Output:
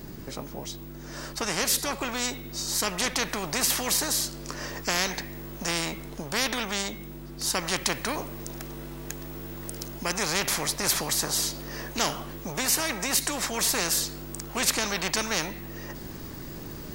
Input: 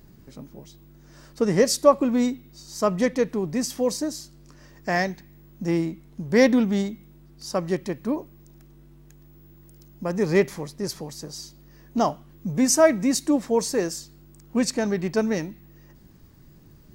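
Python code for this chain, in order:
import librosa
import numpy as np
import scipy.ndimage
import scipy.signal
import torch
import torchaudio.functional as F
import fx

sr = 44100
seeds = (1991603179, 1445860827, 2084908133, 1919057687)

y = fx.rider(x, sr, range_db=4, speed_s=0.5)
y = fx.spectral_comp(y, sr, ratio=4.0)
y = F.gain(torch.from_numpy(y), -1.5).numpy()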